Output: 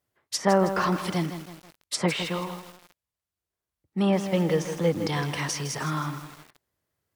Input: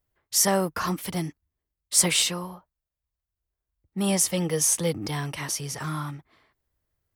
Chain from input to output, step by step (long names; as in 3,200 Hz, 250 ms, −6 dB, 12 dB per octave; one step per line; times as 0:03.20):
high-pass filter 130 Hz 12 dB per octave
treble cut that deepens with the level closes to 1,800 Hz, closed at −20.5 dBFS
feedback echo at a low word length 160 ms, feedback 55%, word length 7 bits, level −9 dB
level +3 dB